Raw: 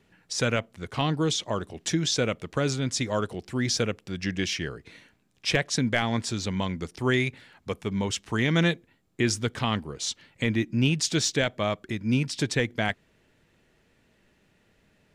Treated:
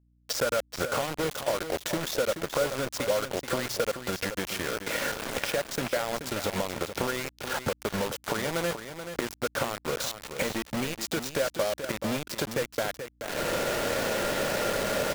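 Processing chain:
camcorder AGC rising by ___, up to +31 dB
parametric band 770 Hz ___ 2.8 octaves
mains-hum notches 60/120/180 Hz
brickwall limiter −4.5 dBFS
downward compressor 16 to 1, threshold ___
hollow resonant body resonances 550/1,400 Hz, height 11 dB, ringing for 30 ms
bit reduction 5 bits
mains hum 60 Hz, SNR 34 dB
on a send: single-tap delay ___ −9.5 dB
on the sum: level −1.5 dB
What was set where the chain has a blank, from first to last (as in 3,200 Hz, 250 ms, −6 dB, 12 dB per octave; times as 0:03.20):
50 dB per second, +13 dB, −28 dBFS, 430 ms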